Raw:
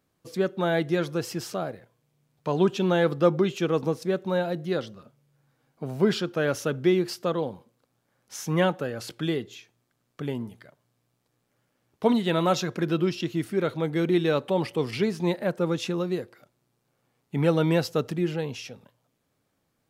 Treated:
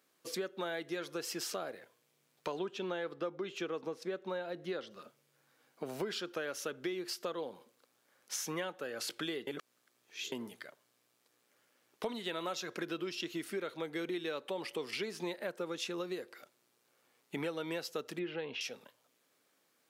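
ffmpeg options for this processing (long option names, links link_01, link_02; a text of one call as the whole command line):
ffmpeg -i in.wav -filter_complex "[0:a]asettb=1/sr,asplit=3[link_01][link_02][link_03];[link_01]atrim=end=2.594[link_04];[link_02]atrim=start=2.59:end=4.91,asetpts=PTS-STARTPTS,afade=type=in:duration=0.004:curve=qsin,afade=type=out:start_time=2.316:duration=0.004:curve=qsin,lowpass=frequency=3000:poles=1[link_05];[link_03]atrim=start=4.906[link_06];[link_04][link_05]acrossfade=duration=0.004:curve1=hsin:curve2=qsin[link_07];[link_07][link_06]acrossfade=duration=0.004:curve1=qsin:curve2=hsin,asettb=1/sr,asplit=3[link_08][link_09][link_10];[link_08]atrim=end=18.194[link_11];[link_09]atrim=start=18.19:end=18.61,asetpts=PTS-STARTPTS,afade=type=in:duration=0.004:curve=qsin,afade=type=out:start_time=0.416:duration=0.004:curve=qsin,lowpass=frequency=3500:width=0.5412,lowpass=frequency=3500:width=1.3066[link_12];[link_10]atrim=start=18.606[link_13];[link_11][link_12]acrossfade=duration=0.004:curve1=hsin:curve2=qsin[link_14];[link_14][link_13]acrossfade=duration=0.004:curve1=qsin:curve2=hsin,asplit=3[link_15][link_16][link_17];[link_15]atrim=end=9.472[link_18];[link_16]atrim=start=9.468:end=10.322,asetpts=PTS-STARTPTS,areverse[link_19];[link_17]atrim=start=10.318[link_20];[link_18][link_19]acrossfade=duration=0.004:curve1=hsin:curve2=hsin[link_21];[link_21][link_20]acrossfade=duration=0.004:curve1=hsin:curve2=hsin,highpass=440,equalizer=frequency=760:width_type=o:width=1.3:gain=-6,acompressor=threshold=-41dB:ratio=6,volume=5dB" out.wav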